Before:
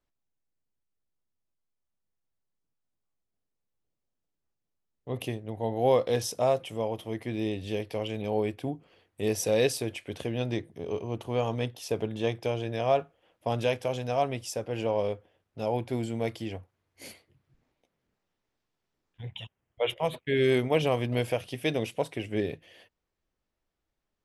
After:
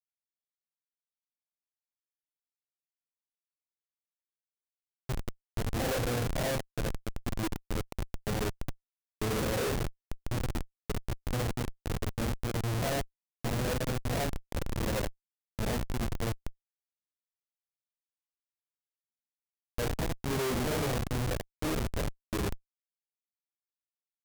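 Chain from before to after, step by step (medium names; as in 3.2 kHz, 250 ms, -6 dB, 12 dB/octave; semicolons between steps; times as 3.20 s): phase randomisation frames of 200 ms; Schmitt trigger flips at -26 dBFS; treble shelf 5.1 kHz +4 dB; trim +1.5 dB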